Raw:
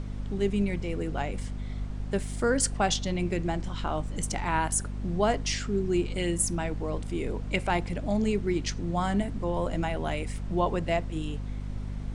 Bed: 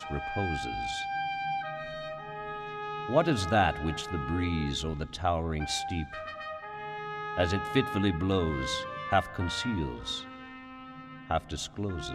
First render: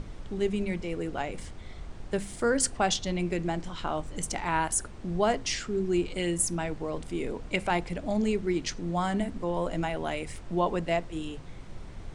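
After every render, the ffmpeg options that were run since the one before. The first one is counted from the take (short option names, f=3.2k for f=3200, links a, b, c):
-af "bandreject=f=50:t=h:w=6,bandreject=f=100:t=h:w=6,bandreject=f=150:t=h:w=6,bandreject=f=200:t=h:w=6,bandreject=f=250:t=h:w=6"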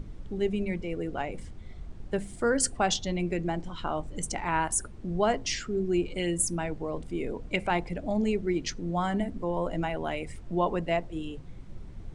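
-af "afftdn=nr=9:nf=-43"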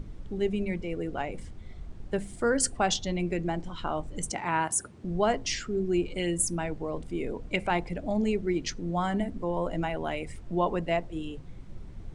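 -filter_complex "[0:a]asettb=1/sr,asplit=3[a][b][c];[a]atrim=end=4.314[d];[b]atrim=start=4.31:end=5.04,asetpts=PTS-STARTPTS,afade=t=in:d=0.004:c=qsin,afade=t=out:st=0.726:d=0.004:c=qsin,highpass=f=93:w=0.5412,highpass=f=93:w=1.3066[e];[c]atrim=start=5.036[f];[d][e]acrossfade=d=0.004:c1=hsin:c2=qsin[g];[g][f]acrossfade=d=0.004:c1=qsin:c2=hsin"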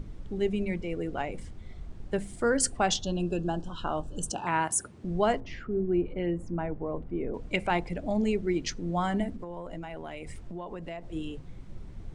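-filter_complex "[0:a]asettb=1/sr,asplit=3[a][b][c];[a]atrim=end=3.014[d];[b]atrim=start=3.01:end=4.47,asetpts=PTS-STARTPTS,afade=t=in:d=0.004:c=qsin,afade=t=out:st=1.456:d=0.004:c=qsin,asuperstop=centerf=2100:order=20:qfactor=2.8[e];[c]atrim=start=4.466[f];[d][e]acrossfade=d=0.004:c1=hsin:c2=qsin[g];[g][f]acrossfade=d=0.004:c1=qsin:c2=hsin,asettb=1/sr,asplit=3[h][i][j];[h]atrim=end=5.404[k];[i]atrim=start=5.4:end=7.34,asetpts=PTS-STARTPTS,afade=t=in:d=0.004:c=qsin,afade=t=out:st=1.936:d=0.004:c=qsin,lowpass=1.4k[l];[j]atrim=start=7.336[m];[k][l]acrossfade=d=0.004:c1=hsin:c2=qsin[n];[n][m]acrossfade=d=0.004:c1=qsin:c2=hsin,asettb=1/sr,asplit=3[o][p][q];[o]atrim=end=9.354[r];[p]atrim=start=9.35:end=11.1,asetpts=PTS-STARTPTS,afade=t=in:d=0.004:c=qsin,afade=t=out:st=1.746:d=0.004:c=qsin,acompressor=threshold=-35dB:ratio=6:attack=3.2:release=140:knee=1:detection=peak[s];[q]atrim=start=11.096[t];[r][s]acrossfade=d=0.004:c1=hsin:c2=qsin[u];[u][t]acrossfade=d=0.004:c1=qsin:c2=hsin"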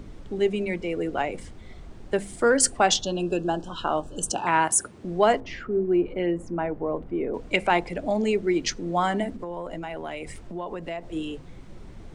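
-filter_complex "[0:a]acrossover=split=240[a][b];[a]alimiter=level_in=11dB:limit=-24dB:level=0:latency=1,volume=-11dB[c];[b]acontrast=69[d];[c][d]amix=inputs=2:normalize=0"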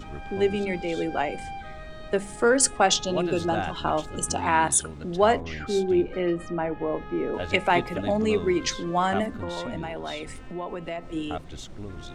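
-filter_complex "[1:a]volume=-5.5dB[a];[0:a][a]amix=inputs=2:normalize=0"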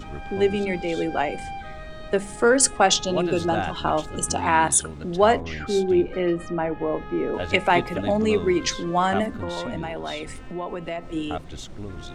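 -af "volume=2.5dB"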